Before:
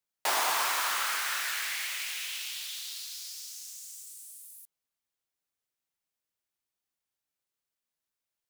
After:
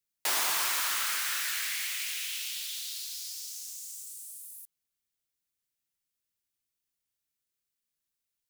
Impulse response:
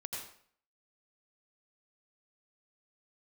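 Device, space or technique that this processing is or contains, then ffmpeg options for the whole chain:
smiley-face EQ: -af "lowshelf=f=140:g=4,equalizer=f=780:t=o:w=1.6:g=-8,highshelf=f=6.5k:g=4"

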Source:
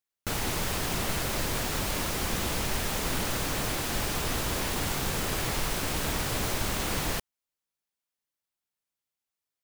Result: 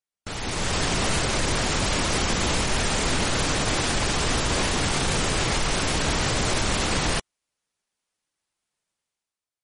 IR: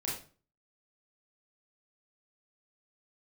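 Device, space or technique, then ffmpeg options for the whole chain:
low-bitrate web radio: -af "dynaudnorm=f=110:g=11:m=11.5dB,alimiter=limit=-10dB:level=0:latency=1:release=30,volume=-3dB" -ar 48000 -c:a libmp3lame -b:a 40k

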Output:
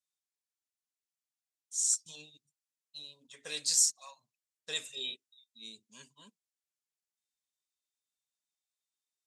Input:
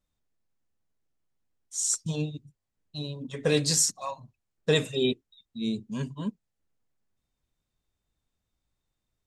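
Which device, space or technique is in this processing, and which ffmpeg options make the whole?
piezo pickup straight into a mixer: -filter_complex "[0:a]lowpass=9k,aderivative,asettb=1/sr,asplit=3[a][b][c];[a]atrim=end=4.944[d];[b]atrim=start=4.94:end=5.57,asetpts=PTS-STARTPTS,afade=t=in:d=0.004:c=qsin,afade=t=out:st=0.626:d=0.004:c=qsin,asplit=2[e][f];[f]adelay=30,volume=-4dB[g];[e][g]amix=inputs=2:normalize=0,atrim=end_sample=27783[h];[c]atrim=start=5.566[i];[d][h]acrossfade=d=0.004:c1=hsin:c2=qsin[j];[j][i]acrossfade=d=0.004:c1=qsin:c2=hsin"

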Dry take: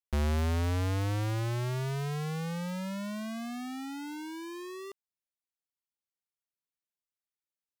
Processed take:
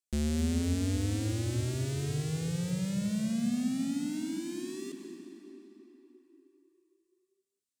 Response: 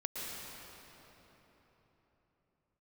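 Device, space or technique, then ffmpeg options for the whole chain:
ducked reverb: -filter_complex "[0:a]asplit=3[a][b][c];[1:a]atrim=start_sample=2205[d];[b][d]afir=irnorm=-1:irlink=0[e];[c]apad=whole_len=344017[f];[e][f]sidechaincompress=threshold=-32dB:ratio=8:attack=16:release=390,volume=-3dB[g];[a][g]amix=inputs=2:normalize=0,equalizer=f=250:t=o:w=1:g=11,equalizer=f=1k:t=o:w=1:g=-12,equalizer=f=4k:t=o:w=1:g=3,equalizer=f=8k:t=o:w=1:g=12,volume=-7dB"

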